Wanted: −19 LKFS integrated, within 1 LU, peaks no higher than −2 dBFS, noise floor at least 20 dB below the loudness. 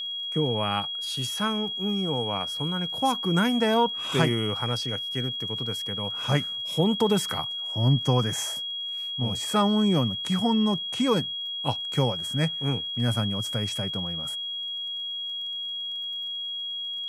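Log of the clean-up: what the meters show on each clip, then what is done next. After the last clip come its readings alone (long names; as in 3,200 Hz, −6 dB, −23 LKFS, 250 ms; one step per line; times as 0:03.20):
crackle rate 25 per second; interfering tone 3,300 Hz; level of the tone −30 dBFS; integrated loudness −26.0 LKFS; sample peak −6.0 dBFS; target loudness −19.0 LKFS
→ click removal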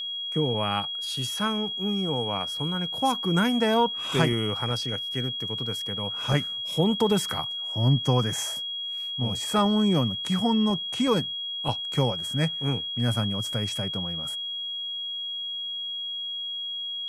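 crackle rate 0 per second; interfering tone 3,300 Hz; level of the tone −30 dBFS
→ notch filter 3,300 Hz, Q 30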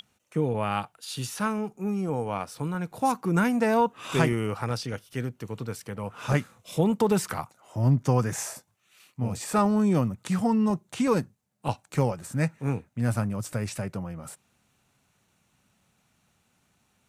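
interfering tone none found; integrated loudness −28.0 LKFS; sample peak −6.5 dBFS; target loudness −19.0 LKFS
→ level +9 dB
brickwall limiter −2 dBFS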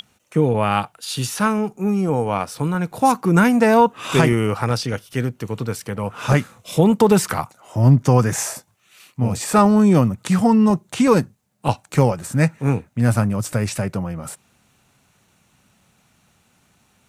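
integrated loudness −19.0 LKFS; sample peak −2.0 dBFS; background noise floor −61 dBFS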